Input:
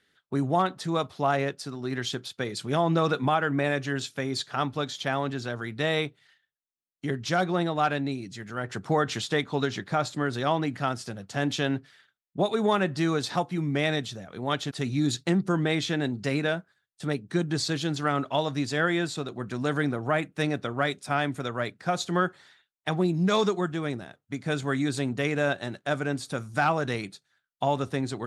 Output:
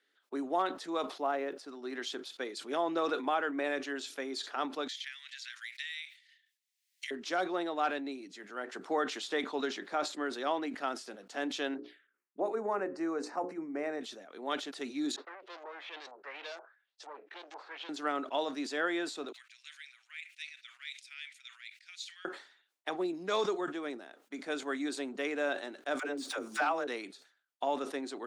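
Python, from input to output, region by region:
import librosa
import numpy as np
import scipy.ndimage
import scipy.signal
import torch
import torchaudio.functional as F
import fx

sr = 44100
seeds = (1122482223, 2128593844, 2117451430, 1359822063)

y = fx.chain(x, sr, fx.block_float(bits=7),
    fx.high_shelf(hz=2500.0, db=-10.5), at=(1.2, 1.68))
y = fx.chain(y, sr, fx.ellip_highpass(hz=1900.0, order=4, stop_db=70),
    fx.band_squash(depth_pct=100), at=(4.88, 7.11))
y = fx.chain(y, sr, fx.env_phaser(low_hz=570.0, high_hz=3400.0, full_db=-28.5),
    fx.high_shelf(hz=3100.0, db=-9.0),
    fx.hum_notches(base_hz=60, count=9), at=(11.74, 14.01))
y = fx.chain(y, sr, fx.tube_stage(drive_db=34.0, bias=0.5),
    fx.highpass(hz=480.0, slope=24),
    fx.filter_lfo_lowpass(shape='saw_up', hz=2.1, low_hz=820.0, high_hz=7100.0, q=3.0), at=(15.16, 17.89))
y = fx.chain(y, sr, fx.cheby1_highpass(hz=2200.0, order=4),
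    fx.high_shelf(hz=8000.0, db=-10.5), at=(19.32, 22.25))
y = fx.chain(y, sr, fx.median_filter(points=3),
    fx.dispersion(late='lows', ms=73.0, hz=400.0),
    fx.pre_swell(db_per_s=36.0), at=(25.99, 26.87))
y = scipy.signal.sosfilt(scipy.signal.butter(6, 270.0, 'highpass', fs=sr, output='sos'), y)
y = fx.high_shelf(y, sr, hz=8700.0, db=-6.5)
y = fx.sustainer(y, sr, db_per_s=120.0)
y = y * 10.0 ** (-6.5 / 20.0)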